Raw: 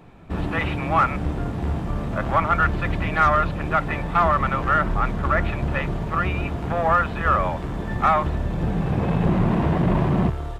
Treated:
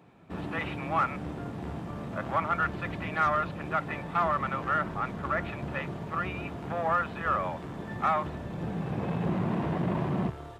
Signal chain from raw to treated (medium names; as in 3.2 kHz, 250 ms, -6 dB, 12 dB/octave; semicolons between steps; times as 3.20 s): high-pass 120 Hz 12 dB/octave; trim -8 dB